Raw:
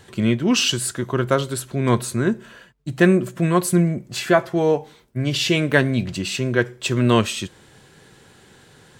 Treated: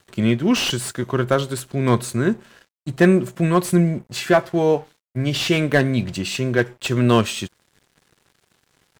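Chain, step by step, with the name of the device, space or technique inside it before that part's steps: early transistor amplifier (crossover distortion -46 dBFS; slew-rate limiter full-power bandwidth 320 Hz); trim +1 dB

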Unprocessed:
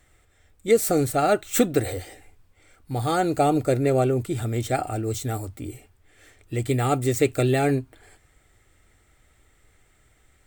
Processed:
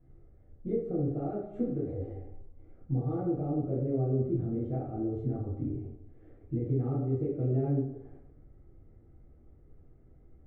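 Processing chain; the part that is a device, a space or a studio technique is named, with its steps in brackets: television next door (compression 4:1, threshold -34 dBFS, peak gain reduction 17.5 dB; low-pass 390 Hz 12 dB/octave; reverberation RT60 0.75 s, pre-delay 4 ms, DRR -7.5 dB); trim -2.5 dB

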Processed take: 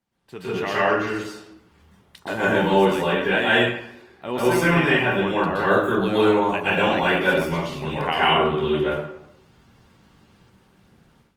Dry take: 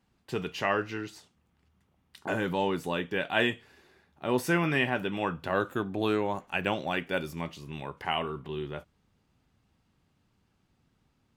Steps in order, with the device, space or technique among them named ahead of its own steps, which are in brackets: far-field microphone of a smart speaker (reverberation RT60 0.75 s, pre-delay 115 ms, DRR -8.5 dB; high-pass 130 Hz 6 dB/octave; level rider gain up to 14.5 dB; trim -5.5 dB; Opus 24 kbps 48 kHz)

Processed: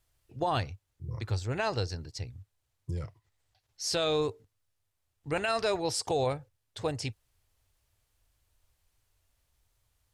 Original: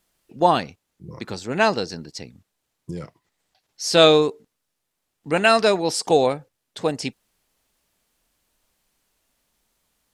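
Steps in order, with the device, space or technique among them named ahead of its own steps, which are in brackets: car stereo with a boomy subwoofer (resonant low shelf 140 Hz +11 dB, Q 3; peak limiter -13 dBFS, peak gain reduction 10.5 dB); trim -7 dB

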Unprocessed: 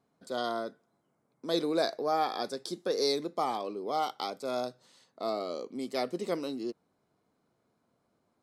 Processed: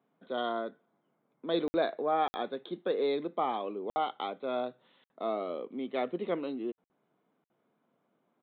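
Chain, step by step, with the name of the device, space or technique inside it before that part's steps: call with lost packets (high-pass 150 Hz 24 dB/octave; resampled via 8 kHz; lost packets of 60 ms)

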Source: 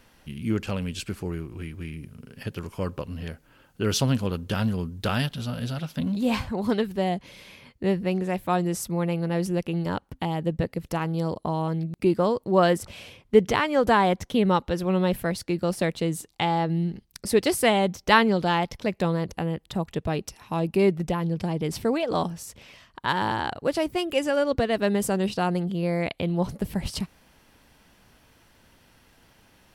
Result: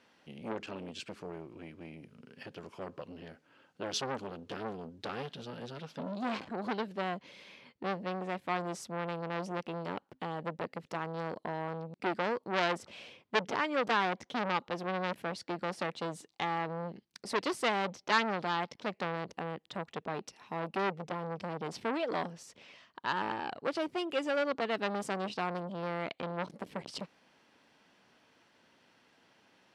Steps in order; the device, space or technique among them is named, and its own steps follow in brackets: public-address speaker with an overloaded transformer (transformer saturation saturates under 3 kHz; band-pass 220–5500 Hz); trim -5.5 dB

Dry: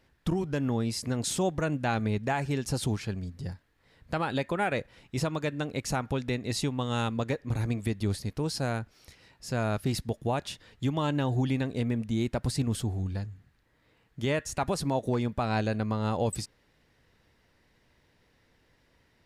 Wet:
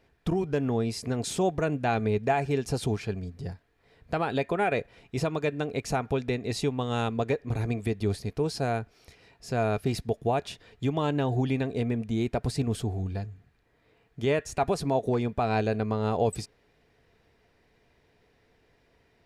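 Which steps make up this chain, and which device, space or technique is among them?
inside a helmet (treble shelf 5.6 kHz -5 dB; small resonant body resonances 430/690/2400 Hz, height 9 dB, ringing for 45 ms)

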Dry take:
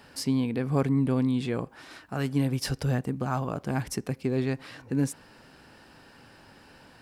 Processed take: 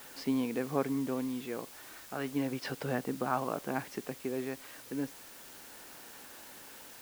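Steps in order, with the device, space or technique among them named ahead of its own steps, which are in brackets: shortwave radio (band-pass 290–2900 Hz; tremolo 0.32 Hz, depth 51%; white noise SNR 15 dB)

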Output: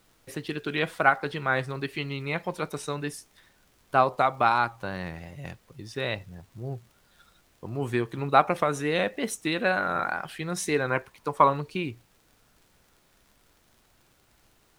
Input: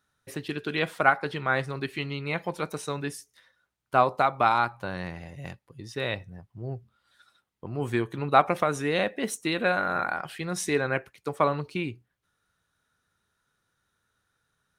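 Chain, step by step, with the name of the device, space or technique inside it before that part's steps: vinyl LP (wow and flutter; crackle; pink noise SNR 34 dB); 10.90–11.50 s: peaking EQ 990 Hz +11 dB 0.32 oct

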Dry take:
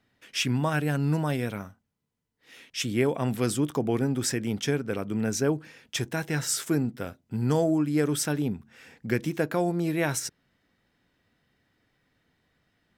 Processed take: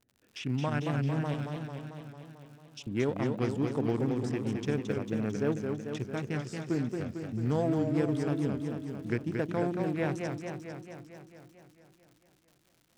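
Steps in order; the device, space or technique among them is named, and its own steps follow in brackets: local Wiener filter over 41 samples; de-esser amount 80%; 1.34–2.87 s: steep high-pass 2.7 kHz; lo-fi chain (low-pass 6.5 kHz 12 dB/octave; wow and flutter; crackle 90 per s -44 dBFS); modulated delay 223 ms, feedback 66%, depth 144 cents, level -5 dB; trim -4.5 dB

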